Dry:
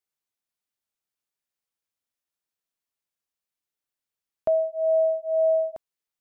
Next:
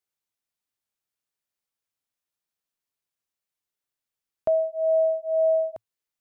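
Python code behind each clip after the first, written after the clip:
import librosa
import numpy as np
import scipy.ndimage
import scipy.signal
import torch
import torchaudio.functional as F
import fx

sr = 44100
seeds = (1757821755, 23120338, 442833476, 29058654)

y = fx.peak_eq(x, sr, hz=110.0, db=4.0, octaves=0.3)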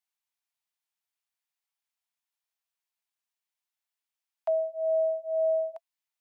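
y = scipy.signal.sosfilt(scipy.signal.cheby1(6, 3, 650.0, 'highpass', fs=sr, output='sos'), x)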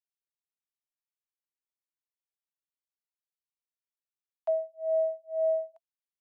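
y = fx.upward_expand(x, sr, threshold_db=-35.0, expansion=2.5)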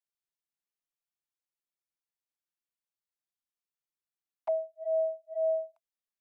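y = fx.env_flanger(x, sr, rest_ms=5.8, full_db=-29.5)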